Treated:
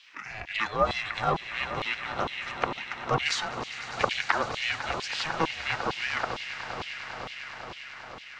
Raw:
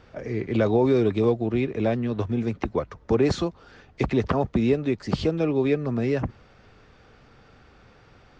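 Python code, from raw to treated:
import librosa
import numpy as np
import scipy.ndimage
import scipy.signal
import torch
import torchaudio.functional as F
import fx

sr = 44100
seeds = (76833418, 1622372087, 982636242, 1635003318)

y = fx.high_shelf(x, sr, hz=5700.0, db=7.0)
y = fx.hum_notches(y, sr, base_hz=60, count=8)
y = fx.echo_swell(y, sr, ms=100, loudest=8, wet_db=-15.5)
y = fx.filter_lfo_highpass(y, sr, shape='saw_down', hz=2.2, low_hz=730.0, high_hz=3100.0, q=3.4)
y = y * np.sin(2.0 * np.pi * 320.0 * np.arange(len(y)) / sr)
y = y * librosa.db_to_amplitude(3.5)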